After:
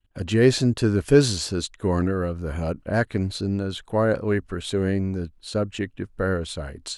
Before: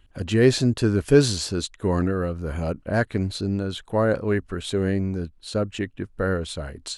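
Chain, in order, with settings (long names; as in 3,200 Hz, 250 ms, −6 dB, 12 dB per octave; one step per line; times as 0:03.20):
downward expander −46 dBFS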